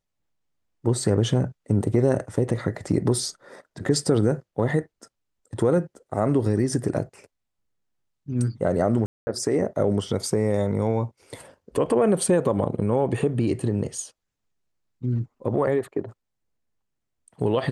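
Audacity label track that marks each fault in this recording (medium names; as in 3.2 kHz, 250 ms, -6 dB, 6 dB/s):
9.060000	9.270000	dropout 210 ms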